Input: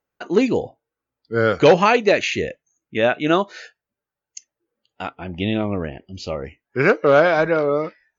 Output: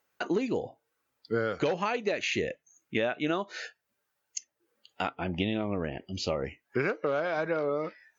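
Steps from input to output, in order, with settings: high-pass 98 Hz 6 dB/octave; compression 16:1, threshold -25 dBFS, peak gain reduction 18 dB; tape noise reduction on one side only encoder only

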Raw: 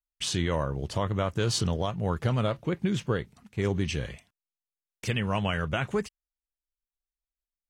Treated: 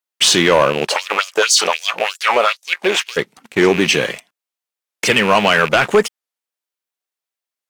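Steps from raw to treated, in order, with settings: rattle on loud lows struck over -29 dBFS, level -31 dBFS; high-pass 150 Hz 24 dB/octave; tone controls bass -14 dB, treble -2 dB; waveshaping leveller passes 2; 0.88–3.16 s: LFO high-pass sine 5.1 Hz -> 1.5 Hz 520–6900 Hz; loudness maximiser +16 dB; warped record 45 rpm, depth 160 cents; trim -2.5 dB

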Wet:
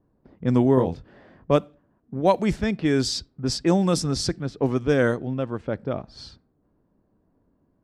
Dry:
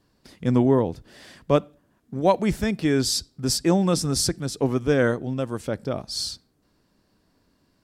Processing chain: 0.75–1.52 s: doubling 23 ms -5 dB; level-controlled noise filter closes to 810 Hz, open at -15.5 dBFS

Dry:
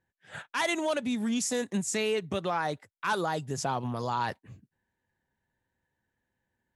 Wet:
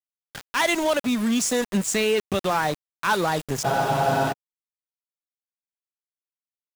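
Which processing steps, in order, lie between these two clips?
small samples zeroed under -35 dBFS; spectral freeze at 3.68 s, 0.63 s; trim +7 dB

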